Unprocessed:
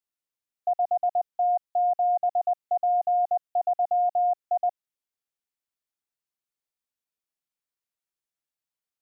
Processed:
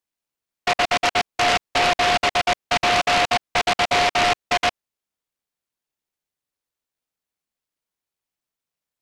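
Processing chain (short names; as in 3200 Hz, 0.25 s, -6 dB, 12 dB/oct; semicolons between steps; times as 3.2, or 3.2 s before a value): noise-modulated delay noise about 1600 Hz, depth 0.21 ms; gain +4.5 dB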